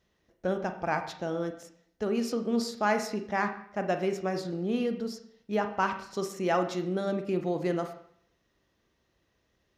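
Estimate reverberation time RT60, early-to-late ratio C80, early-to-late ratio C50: 0.65 s, 12.0 dB, 10.0 dB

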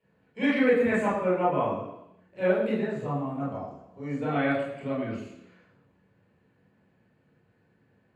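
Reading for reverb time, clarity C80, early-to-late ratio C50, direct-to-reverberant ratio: 0.85 s, 6.0 dB, 3.0 dB, -6.5 dB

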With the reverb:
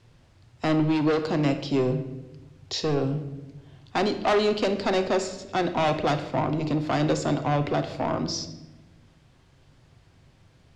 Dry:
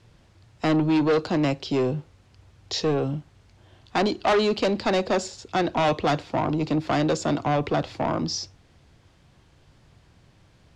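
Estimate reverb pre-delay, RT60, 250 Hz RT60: 7 ms, 1.1 s, 1.7 s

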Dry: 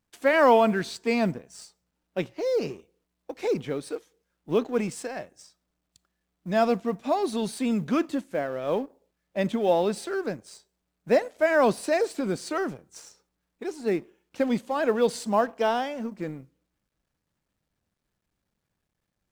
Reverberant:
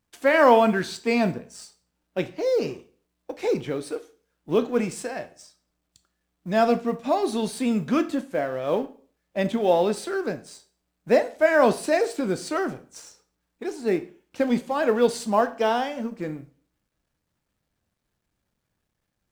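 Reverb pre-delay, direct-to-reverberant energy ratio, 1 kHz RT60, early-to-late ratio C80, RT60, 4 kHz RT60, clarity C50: 4 ms, 9.5 dB, 0.40 s, 21.0 dB, 0.40 s, 0.40 s, 16.5 dB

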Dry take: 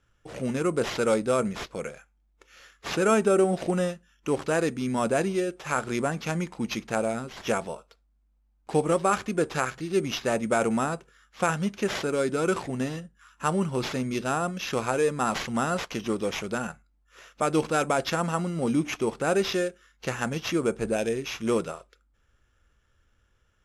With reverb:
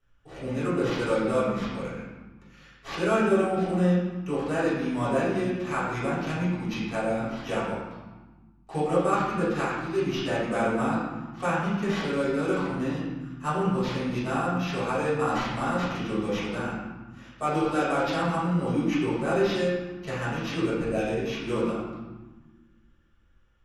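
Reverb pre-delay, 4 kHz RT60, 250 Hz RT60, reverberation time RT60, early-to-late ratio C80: 3 ms, 0.90 s, 2.0 s, 1.3 s, 2.5 dB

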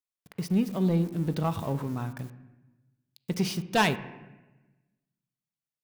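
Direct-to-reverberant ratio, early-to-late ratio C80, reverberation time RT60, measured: 11.0 dB, 15.5 dB, 1.1 s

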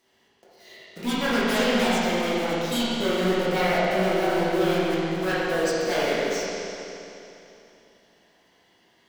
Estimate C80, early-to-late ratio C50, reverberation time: -3.0 dB, -5.0 dB, 3.0 s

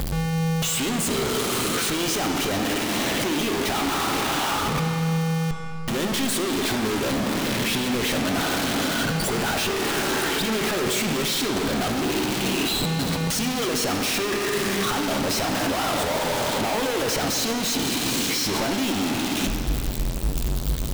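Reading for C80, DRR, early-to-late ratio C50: 6.0 dB, 4.0 dB, 5.0 dB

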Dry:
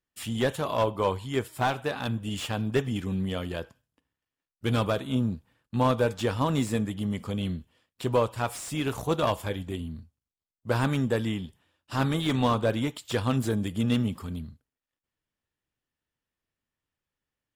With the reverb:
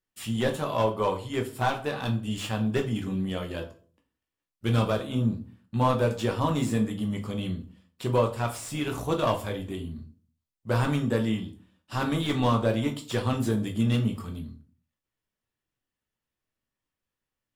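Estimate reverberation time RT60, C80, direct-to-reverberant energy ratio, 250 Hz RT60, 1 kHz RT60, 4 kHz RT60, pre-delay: 0.40 s, 18.0 dB, 3.0 dB, 0.55 s, 0.35 s, 0.30 s, 5 ms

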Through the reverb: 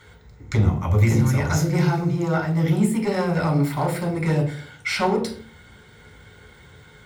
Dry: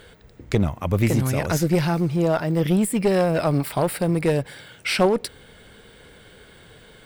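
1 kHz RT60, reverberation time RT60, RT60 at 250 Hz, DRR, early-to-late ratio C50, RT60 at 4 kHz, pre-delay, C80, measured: 0.45 s, 0.50 s, 0.55 s, -0.5 dB, 10.5 dB, 0.35 s, 3 ms, 14.5 dB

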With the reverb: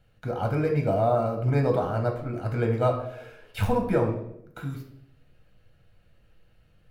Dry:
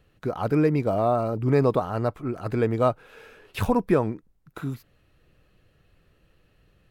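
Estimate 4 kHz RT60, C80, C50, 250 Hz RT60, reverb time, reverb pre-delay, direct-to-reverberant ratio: 0.60 s, 10.5 dB, 7.0 dB, 0.85 s, 0.75 s, 6 ms, 2.0 dB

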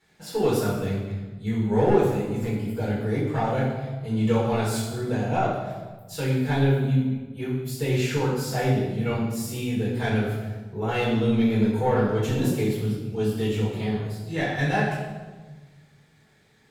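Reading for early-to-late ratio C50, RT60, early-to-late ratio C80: 1.5 dB, 1.3 s, 4.0 dB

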